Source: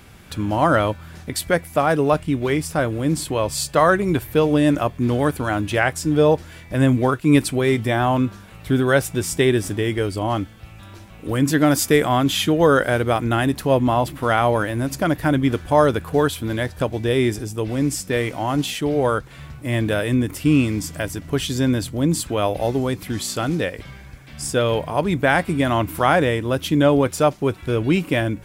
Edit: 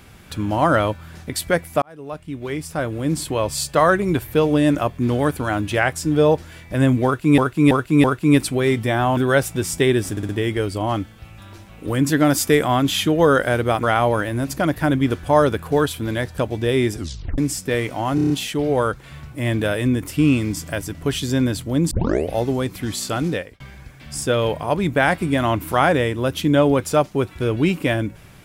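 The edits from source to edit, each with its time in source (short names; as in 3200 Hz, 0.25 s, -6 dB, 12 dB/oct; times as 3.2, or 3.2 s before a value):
1.82–3.25 fade in
7.05–7.38 loop, 4 plays
8.18–8.76 cut
9.7 stutter 0.06 s, 4 plays
13.24–14.25 cut
17.38 tape stop 0.42 s
18.57 stutter 0.03 s, 6 plays
22.18 tape start 0.40 s
23.58–23.87 fade out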